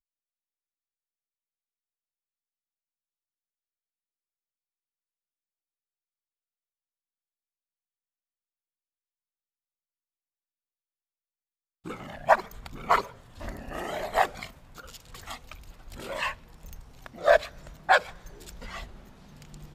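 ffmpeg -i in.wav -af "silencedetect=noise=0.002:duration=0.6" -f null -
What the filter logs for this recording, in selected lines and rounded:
silence_start: 0.00
silence_end: 11.85 | silence_duration: 11.85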